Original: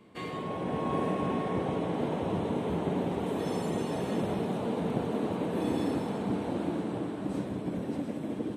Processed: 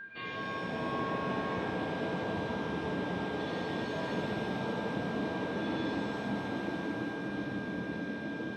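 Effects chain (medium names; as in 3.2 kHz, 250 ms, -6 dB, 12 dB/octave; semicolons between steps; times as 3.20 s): Chebyshev low-pass 4 kHz, order 4; treble shelf 3 kHz +11 dB; whistle 1.6 kHz -35 dBFS; pitch-shifted reverb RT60 1.8 s, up +7 st, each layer -8 dB, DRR -1.5 dB; trim -7.5 dB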